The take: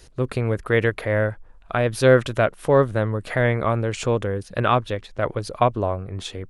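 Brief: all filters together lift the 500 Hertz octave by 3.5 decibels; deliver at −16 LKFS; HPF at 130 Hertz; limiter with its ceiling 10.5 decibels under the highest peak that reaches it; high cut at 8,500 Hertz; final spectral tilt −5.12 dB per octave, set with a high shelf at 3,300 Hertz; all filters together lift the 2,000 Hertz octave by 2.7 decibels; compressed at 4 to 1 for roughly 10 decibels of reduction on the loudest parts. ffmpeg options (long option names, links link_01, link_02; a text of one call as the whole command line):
ffmpeg -i in.wav -af "highpass=130,lowpass=8500,equalizer=frequency=500:width_type=o:gain=4,equalizer=frequency=2000:width_type=o:gain=5.5,highshelf=frequency=3300:gain=-8.5,acompressor=threshold=-19dB:ratio=4,volume=12dB,alimiter=limit=-3dB:level=0:latency=1" out.wav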